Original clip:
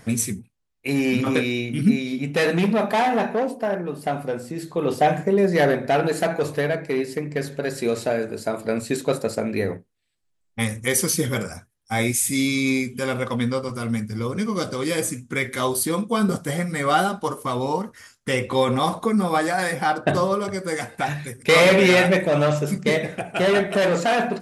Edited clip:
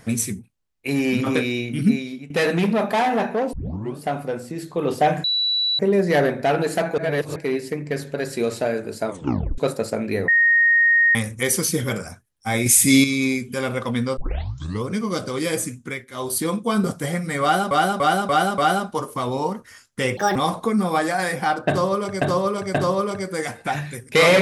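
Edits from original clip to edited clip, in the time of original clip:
1.91–2.30 s: fade out, to -17.5 dB
3.53 s: tape start 0.44 s
5.24 s: add tone 3.94 kHz -18 dBFS 0.55 s
6.43–6.81 s: reverse
8.53 s: tape stop 0.50 s
9.73–10.60 s: bleep 1.86 kHz -12.5 dBFS
12.11–12.49 s: gain +7.5 dB
13.62 s: tape start 0.66 s
15.22–15.83 s: dip -16.5 dB, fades 0.29 s
16.87–17.16 s: loop, 5 plays
18.46–18.75 s: speed 156%
20.08–20.61 s: loop, 3 plays

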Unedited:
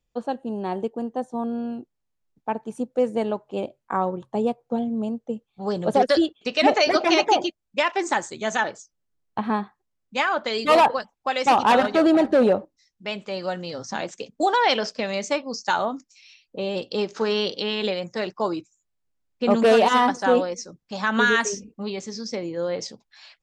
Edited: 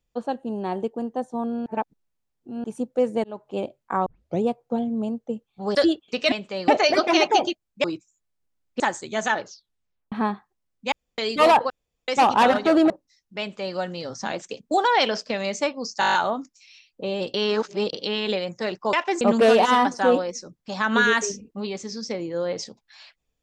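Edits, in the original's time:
1.66–2.64 s: reverse
3.24–3.49 s: fade in
4.06 s: tape start 0.36 s
5.75–6.08 s: delete
7.81–8.09 s: swap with 18.48–19.44 s
8.70 s: tape stop 0.71 s
10.21–10.47 s: room tone
10.99–11.37 s: room tone
12.19–12.59 s: delete
13.09–13.45 s: copy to 6.65 s
15.69 s: stutter 0.02 s, 8 plays
16.89–17.48 s: reverse

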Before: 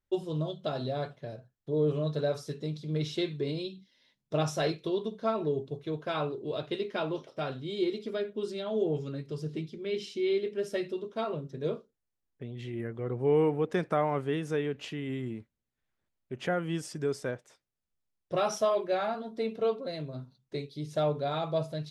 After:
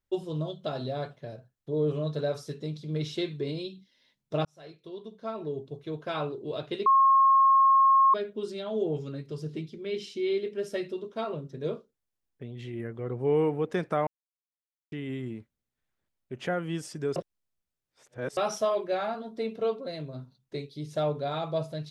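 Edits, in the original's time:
4.45–6.14 s: fade in
6.86–8.14 s: bleep 1.08 kHz -16.5 dBFS
14.07–14.92 s: mute
17.16–18.37 s: reverse

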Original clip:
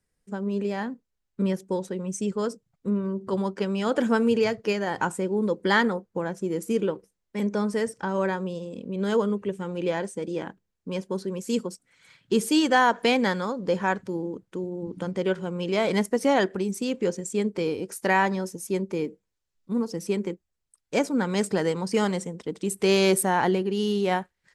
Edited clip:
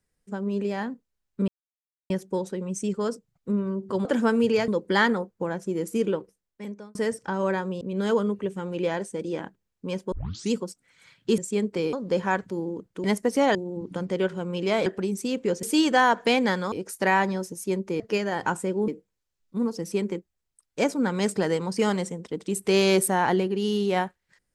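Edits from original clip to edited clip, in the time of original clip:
1.48 s: insert silence 0.62 s
3.43–3.92 s: delete
4.55–5.43 s: move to 19.03 s
6.89–7.70 s: fade out
8.56–8.84 s: delete
11.15 s: tape start 0.40 s
12.41–13.50 s: swap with 17.20–17.75 s
15.92–16.43 s: move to 14.61 s

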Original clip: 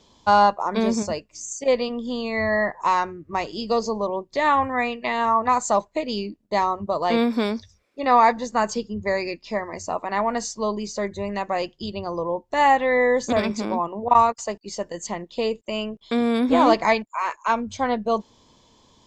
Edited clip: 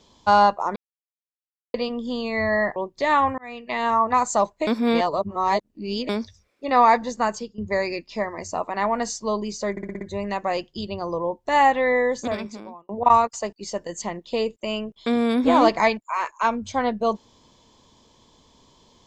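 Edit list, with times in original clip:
0.76–1.74 s: mute
2.76–4.11 s: delete
4.73–5.18 s: fade in
6.02–7.44 s: reverse
8.53–8.93 s: fade out, to -15 dB
11.06 s: stutter 0.06 s, 6 plays
12.85–13.94 s: fade out

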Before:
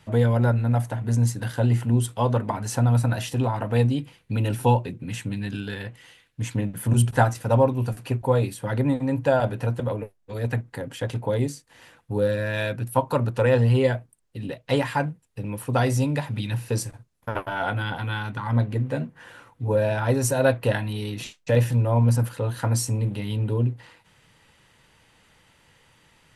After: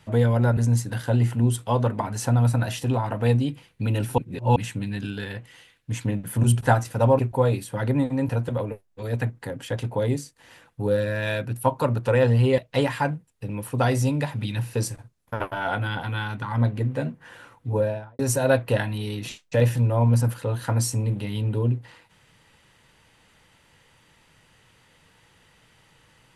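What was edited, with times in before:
0.57–1.07 s: delete
4.68–5.06 s: reverse
7.69–8.09 s: delete
9.19–9.60 s: delete
13.89–14.53 s: delete
19.65–20.14 s: studio fade out

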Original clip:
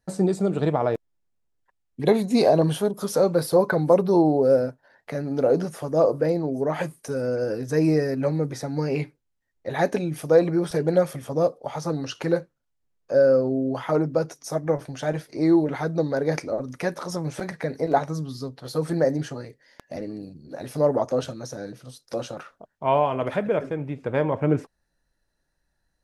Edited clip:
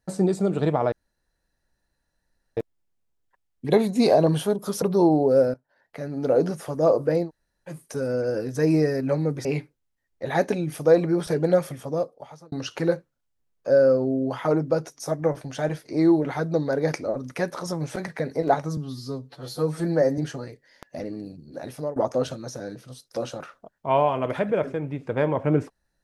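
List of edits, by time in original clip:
0.92 s: insert room tone 1.65 s
3.17–3.96 s: delete
4.68–5.51 s: fade in, from -17 dB
6.40–6.85 s: room tone, crossfade 0.10 s
8.59–8.89 s: delete
11.08–11.96 s: fade out
18.21–19.15 s: stretch 1.5×
20.59–20.93 s: fade out, to -19 dB

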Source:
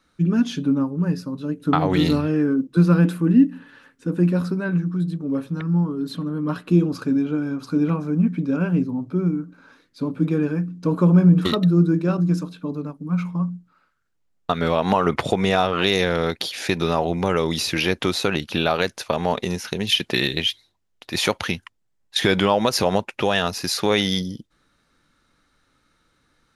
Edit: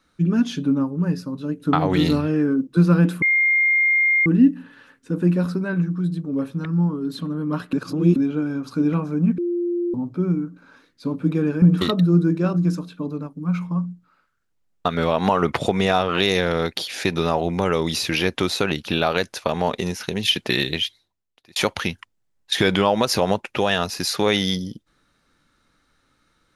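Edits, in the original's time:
3.22 s: add tone 2.12 kHz -14.5 dBFS 1.04 s
6.69–7.12 s: reverse
8.34–8.90 s: bleep 348 Hz -20 dBFS
10.58–11.26 s: delete
20.30–21.20 s: fade out

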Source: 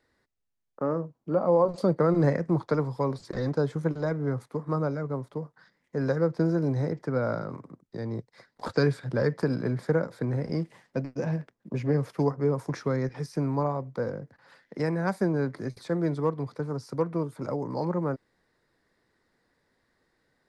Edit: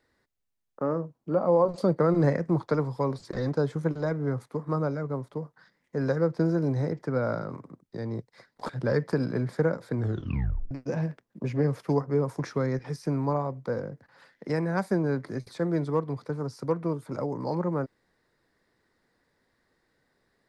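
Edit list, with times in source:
8.69–8.99 s: delete
10.25 s: tape stop 0.76 s

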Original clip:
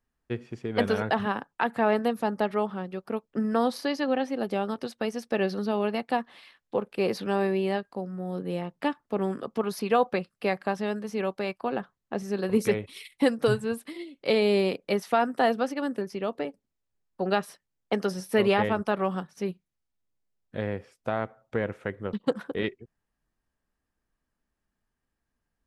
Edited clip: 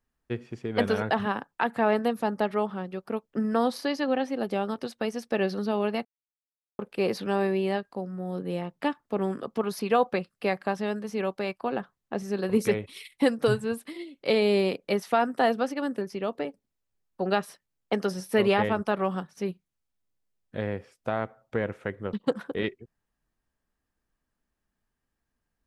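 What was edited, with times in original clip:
6.05–6.79 s: mute

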